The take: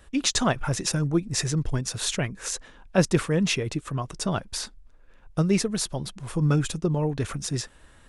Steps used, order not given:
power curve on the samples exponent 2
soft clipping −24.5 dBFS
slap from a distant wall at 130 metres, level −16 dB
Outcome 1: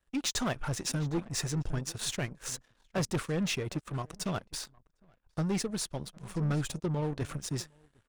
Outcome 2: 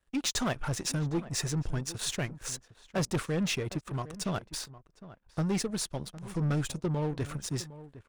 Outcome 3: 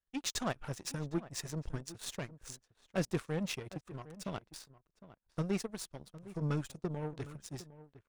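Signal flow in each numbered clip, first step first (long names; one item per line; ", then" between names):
soft clipping, then slap from a distant wall, then power curve on the samples
soft clipping, then power curve on the samples, then slap from a distant wall
power curve on the samples, then soft clipping, then slap from a distant wall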